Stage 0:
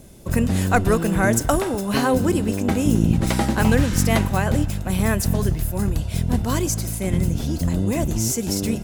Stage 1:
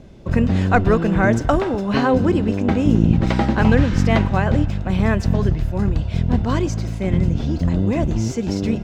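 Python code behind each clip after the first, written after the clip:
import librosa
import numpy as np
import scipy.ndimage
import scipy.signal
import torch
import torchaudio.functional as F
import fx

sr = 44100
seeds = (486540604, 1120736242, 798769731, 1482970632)

y = fx.air_absorb(x, sr, metres=190.0)
y = y * librosa.db_to_amplitude(3.0)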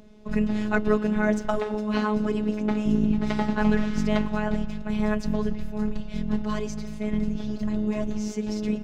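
y = fx.robotise(x, sr, hz=212.0)
y = y * librosa.db_to_amplitude(-5.0)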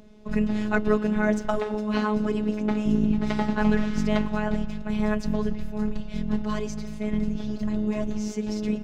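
y = x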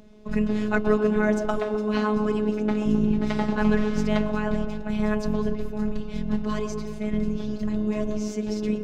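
y = fx.echo_wet_bandpass(x, sr, ms=130, feedback_pct=59, hz=520.0, wet_db=-4.5)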